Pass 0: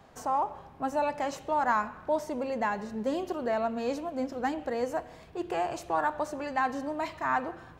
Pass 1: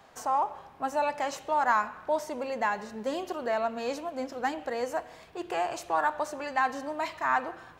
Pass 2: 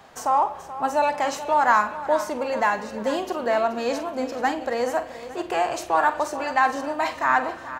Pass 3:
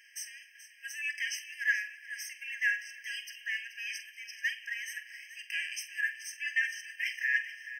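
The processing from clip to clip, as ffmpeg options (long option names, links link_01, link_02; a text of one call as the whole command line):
ffmpeg -i in.wav -af "lowshelf=frequency=400:gain=-11.5,volume=3.5dB" out.wav
ffmpeg -i in.wav -filter_complex "[0:a]asplit=2[link_01][link_02];[link_02]adelay=47,volume=-12dB[link_03];[link_01][link_03]amix=inputs=2:normalize=0,aecho=1:1:430|860|1290|1720:0.2|0.0938|0.0441|0.0207,volume=6.5dB" out.wav
ffmpeg -i in.wav -af "afftfilt=real='re*eq(mod(floor(b*sr/1024/1600),2),1)':imag='im*eq(mod(floor(b*sr/1024/1600),2),1)':win_size=1024:overlap=0.75" out.wav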